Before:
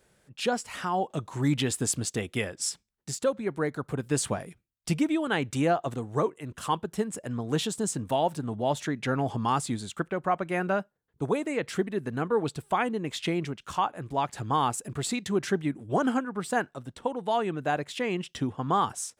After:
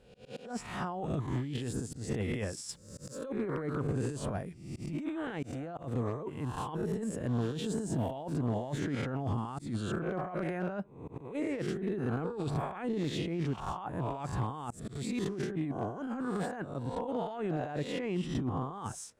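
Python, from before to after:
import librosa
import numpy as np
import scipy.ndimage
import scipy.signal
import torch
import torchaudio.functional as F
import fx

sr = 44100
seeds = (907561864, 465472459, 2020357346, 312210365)

y = fx.spec_swells(x, sr, rise_s=0.64)
y = fx.over_compress(y, sr, threshold_db=-30.0, ratio=-1.0)
y = fx.tilt_eq(y, sr, slope=-2.5)
y = fx.clip_asym(y, sr, top_db=-18.0, bottom_db=-17.0)
y = fx.auto_swell(y, sr, attack_ms=184.0)
y = fx.high_shelf(y, sr, hz=5200.0, db=10.0, at=(2.69, 3.26))
y = y * 10.0 ** (-8.0 / 20.0)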